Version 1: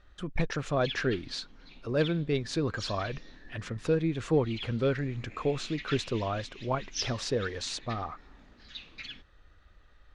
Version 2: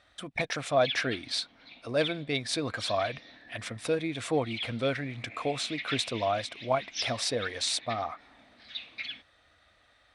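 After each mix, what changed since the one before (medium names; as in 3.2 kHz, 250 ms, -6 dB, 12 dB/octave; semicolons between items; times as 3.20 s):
speech: remove low-pass 3.9 kHz 12 dB/octave; master: add cabinet simulation 130–9600 Hz, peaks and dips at 170 Hz -10 dB, 390 Hz -8 dB, 680 Hz +9 dB, 2.2 kHz +8 dB, 3.6 kHz +6 dB, 6.8 kHz -9 dB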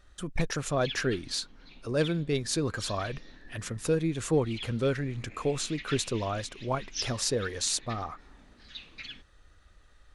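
master: remove cabinet simulation 130–9600 Hz, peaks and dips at 170 Hz -10 dB, 390 Hz -8 dB, 680 Hz +9 dB, 2.2 kHz +8 dB, 3.6 kHz +6 dB, 6.8 kHz -9 dB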